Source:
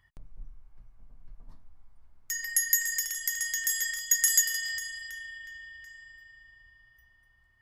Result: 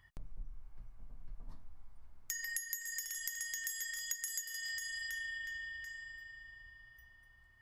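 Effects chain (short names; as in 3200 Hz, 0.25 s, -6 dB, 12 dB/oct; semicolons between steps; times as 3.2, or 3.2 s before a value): compressor 10:1, threshold -39 dBFS, peak gain reduction 21 dB; gain +1.5 dB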